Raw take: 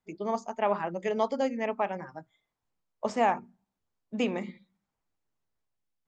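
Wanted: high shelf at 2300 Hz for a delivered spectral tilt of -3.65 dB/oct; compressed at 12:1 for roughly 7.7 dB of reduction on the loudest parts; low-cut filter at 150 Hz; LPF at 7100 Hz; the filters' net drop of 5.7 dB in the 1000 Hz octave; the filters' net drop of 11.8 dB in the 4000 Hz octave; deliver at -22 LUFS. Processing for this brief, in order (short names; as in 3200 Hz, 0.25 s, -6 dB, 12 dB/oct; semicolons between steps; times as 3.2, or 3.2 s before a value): HPF 150 Hz; LPF 7100 Hz; bell 1000 Hz -6 dB; high shelf 2300 Hz -9 dB; bell 4000 Hz -9 dB; compressor 12:1, threshold -32 dBFS; gain +17.5 dB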